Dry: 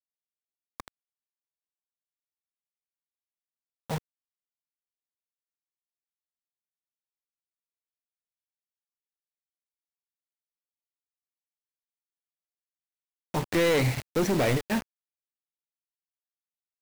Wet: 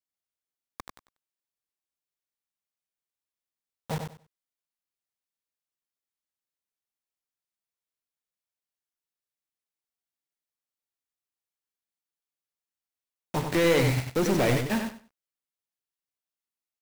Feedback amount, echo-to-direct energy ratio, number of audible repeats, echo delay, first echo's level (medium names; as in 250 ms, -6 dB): 20%, -6.0 dB, 3, 95 ms, -6.0 dB